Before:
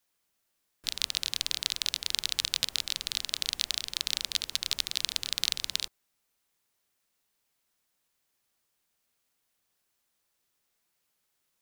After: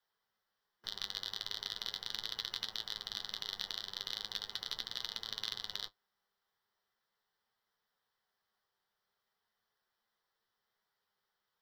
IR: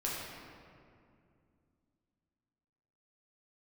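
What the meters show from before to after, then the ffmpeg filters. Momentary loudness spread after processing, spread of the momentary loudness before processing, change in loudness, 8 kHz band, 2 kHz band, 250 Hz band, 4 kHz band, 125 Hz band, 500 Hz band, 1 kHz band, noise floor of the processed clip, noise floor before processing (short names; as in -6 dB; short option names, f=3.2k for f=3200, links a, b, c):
3 LU, 3 LU, -10.0 dB, -18.5 dB, -9.5 dB, -5.5 dB, -9.0 dB, -7.5 dB, -2.5 dB, -2.5 dB, under -85 dBFS, -78 dBFS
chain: -filter_complex "[0:a]superequalizer=6b=0.282:8b=0.631:12b=0.316:15b=0.282:16b=0.316,afreqshift=-24,aeval=exprs='0.501*(cos(1*acos(clip(val(0)/0.501,-1,1)))-cos(1*PI/2))+0.00398*(cos(2*acos(clip(val(0)/0.501,-1,1)))-cos(2*PI/2))+0.0501*(cos(5*acos(clip(val(0)/0.501,-1,1)))-cos(5*PI/2))+0.00631*(cos(7*acos(clip(val(0)/0.501,-1,1)))-cos(7*PI/2))':c=same,flanger=delay=8.7:depth=1.5:regen=57:speed=0.39:shape=triangular,asplit=2[a][b];[b]highpass=f=720:p=1,volume=10dB,asoftclip=type=tanh:threshold=-11dB[c];[a][c]amix=inputs=2:normalize=0,lowpass=f=1.5k:p=1,volume=-6dB,volume=-1dB"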